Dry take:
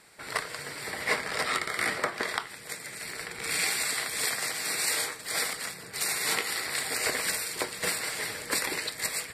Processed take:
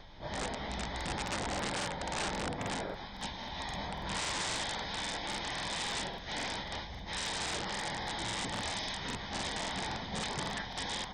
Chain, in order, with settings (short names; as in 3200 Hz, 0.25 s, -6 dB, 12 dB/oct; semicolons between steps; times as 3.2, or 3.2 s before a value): HPF 91 Hz 24 dB/oct; low shelf 310 Hz +11 dB; limiter -22 dBFS, peak gain reduction 11 dB; vocal rider within 4 dB 2 s; plain phase-vocoder stretch 0.51×; hum 50 Hz, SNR 17 dB; wrapped overs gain 28.5 dB; speed mistake 78 rpm record played at 33 rpm; crackling interface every 0.27 s, samples 2048, repeat, from 0.96